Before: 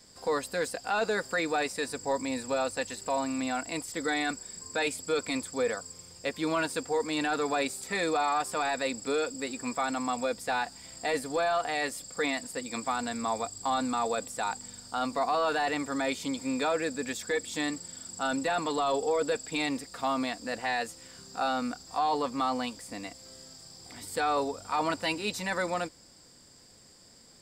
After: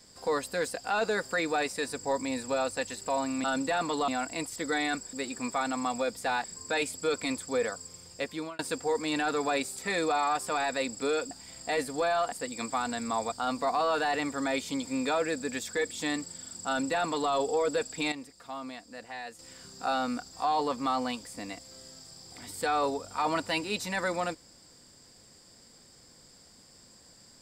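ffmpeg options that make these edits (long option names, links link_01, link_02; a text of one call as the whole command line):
ffmpeg -i in.wav -filter_complex "[0:a]asplit=11[link_01][link_02][link_03][link_04][link_05][link_06][link_07][link_08][link_09][link_10][link_11];[link_01]atrim=end=3.442[link_12];[link_02]atrim=start=18.208:end=18.852[link_13];[link_03]atrim=start=3.438:end=4.492[link_14];[link_04]atrim=start=9.358:end=10.672[link_15];[link_05]atrim=start=4.488:end=6.64,asetpts=PTS-STARTPTS,afade=type=out:start_time=1.612:duration=0.54:curve=qsin[link_16];[link_06]atrim=start=6.64:end=9.362,asetpts=PTS-STARTPTS,afade=type=in:duration=0.004:curve=hsin[link_17];[link_07]atrim=start=10.668:end=11.682[link_18];[link_08]atrim=start=12.458:end=13.462[link_19];[link_09]atrim=start=14.858:end=19.662[link_20];[link_10]atrim=start=19.658:end=20.932,asetpts=PTS-STARTPTS,volume=-10dB[link_21];[link_11]atrim=start=20.928[link_22];[link_12][link_13]acrossfade=duration=0.004:curve1=hsin:curve2=hsin[link_23];[link_23][link_14]acrossfade=duration=0.004:curve1=hsin:curve2=hsin[link_24];[link_24][link_15]acrossfade=duration=0.004:curve1=hsin:curve2=hsin[link_25];[link_16][link_17]concat=n=2:v=0:a=1[link_26];[link_25][link_26]acrossfade=duration=0.004:curve1=hsin:curve2=hsin[link_27];[link_27][link_18]acrossfade=duration=0.004:curve1=hsin:curve2=hsin[link_28];[link_28][link_19]acrossfade=duration=0.004:curve1=hsin:curve2=hsin[link_29];[link_29][link_20]acrossfade=duration=0.004:curve1=hsin:curve2=hsin[link_30];[link_30][link_21]acrossfade=duration=0.004:curve1=hsin:curve2=hsin[link_31];[link_31][link_22]acrossfade=duration=0.004:curve1=hsin:curve2=hsin" out.wav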